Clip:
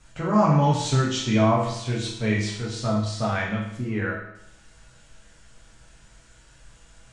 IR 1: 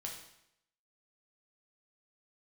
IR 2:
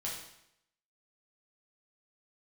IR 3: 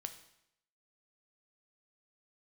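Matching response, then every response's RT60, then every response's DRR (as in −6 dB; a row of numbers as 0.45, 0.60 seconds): 2; 0.75, 0.75, 0.75 seconds; −1.0, −5.5, 7.0 decibels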